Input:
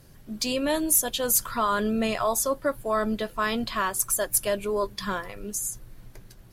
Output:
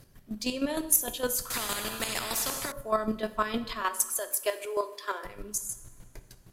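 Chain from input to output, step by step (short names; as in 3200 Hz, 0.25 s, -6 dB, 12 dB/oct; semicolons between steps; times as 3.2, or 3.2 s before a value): 3.81–5.25 steep high-pass 310 Hz 72 dB/oct; chopper 6.5 Hz, depth 65%, duty 25%; two-slope reverb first 0.74 s, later 2.8 s, from -18 dB, DRR 10 dB; 1.5–2.72 spectral compressor 4:1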